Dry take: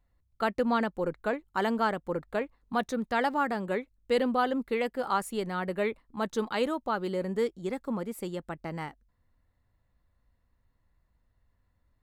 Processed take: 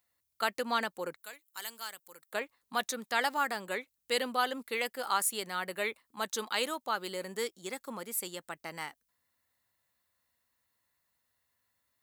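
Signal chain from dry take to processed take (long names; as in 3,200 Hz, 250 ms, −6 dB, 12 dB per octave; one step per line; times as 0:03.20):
0:01.16–0:02.33: first-order pre-emphasis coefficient 0.9
high-pass filter 70 Hz
spectral tilt +4.5 dB per octave
level −2.5 dB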